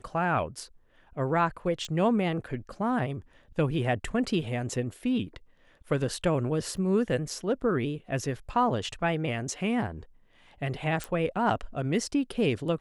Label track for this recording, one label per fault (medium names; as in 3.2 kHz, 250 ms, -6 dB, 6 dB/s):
1.850000	1.850000	pop -24 dBFS
6.770000	6.770000	dropout 2.9 ms
11.040000	11.040000	pop